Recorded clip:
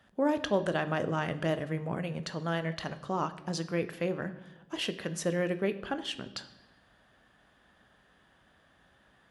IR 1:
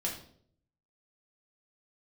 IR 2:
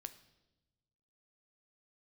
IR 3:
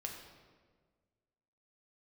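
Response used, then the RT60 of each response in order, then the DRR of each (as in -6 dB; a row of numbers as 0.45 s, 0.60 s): 2; 0.60 s, 1.0 s, 1.6 s; -3.0 dB, 10.0 dB, 0.5 dB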